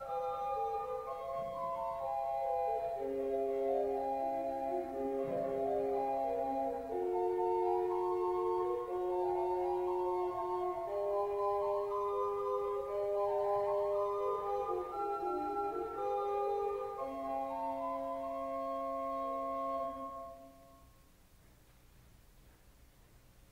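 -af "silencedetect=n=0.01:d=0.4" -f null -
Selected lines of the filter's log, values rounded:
silence_start: 20.28
silence_end: 23.52 | silence_duration: 3.24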